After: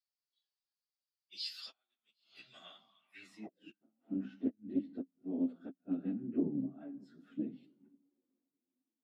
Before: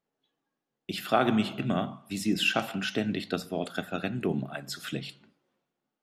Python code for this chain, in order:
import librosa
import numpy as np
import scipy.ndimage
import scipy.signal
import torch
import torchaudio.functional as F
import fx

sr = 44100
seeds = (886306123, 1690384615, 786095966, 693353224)

y = fx.gate_flip(x, sr, shuts_db=-16.0, range_db=-40)
y = fx.stretch_vocoder_free(y, sr, factor=1.5)
y = fx.filter_sweep_bandpass(y, sr, from_hz=4700.0, to_hz=270.0, start_s=2.87, end_s=3.78, q=7.5)
y = fx.doppler_dist(y, sr, depth_ms=0.11)
y = y * 10.0 ** (7.5 / 20.0)